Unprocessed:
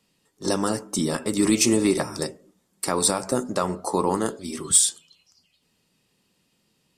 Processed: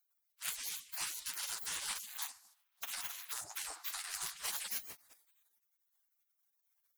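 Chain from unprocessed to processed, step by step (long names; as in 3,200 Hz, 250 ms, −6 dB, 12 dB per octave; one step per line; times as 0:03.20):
lower of the sound and its delayed copy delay 7.8 ms
0:02.06–0:04.36: flat-topped bell 1,600 Hz −14.5 dB 2.4 octaves
downward compressor 12 to 1, threshold −31 dBFS, peak gain reduction 18 dB
dynamic equaliser 2,700 Hz, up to +4 dB, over −59 dBFS, Q 1.5
gate on every frequency bin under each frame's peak −30 dB weak
level +12.5 dB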